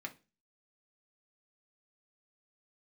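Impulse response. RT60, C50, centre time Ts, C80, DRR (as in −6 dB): non-exponential decay, 17.0 dB, 6 ms, 24.5 dB, 1.5 dB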